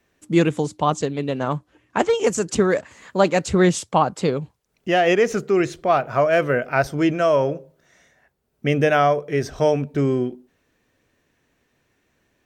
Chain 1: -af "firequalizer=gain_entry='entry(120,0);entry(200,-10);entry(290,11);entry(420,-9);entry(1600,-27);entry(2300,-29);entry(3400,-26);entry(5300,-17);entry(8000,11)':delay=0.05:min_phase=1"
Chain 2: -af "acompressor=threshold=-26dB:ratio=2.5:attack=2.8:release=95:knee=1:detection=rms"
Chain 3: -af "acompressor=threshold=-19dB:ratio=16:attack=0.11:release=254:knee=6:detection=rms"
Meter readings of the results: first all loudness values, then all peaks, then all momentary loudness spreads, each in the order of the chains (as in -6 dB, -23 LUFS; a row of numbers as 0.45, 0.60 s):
-22.0, -29.0, -29.5 LUFS; -4.0, -13.0, -18.0 dBFS; 12, 8, 8 LU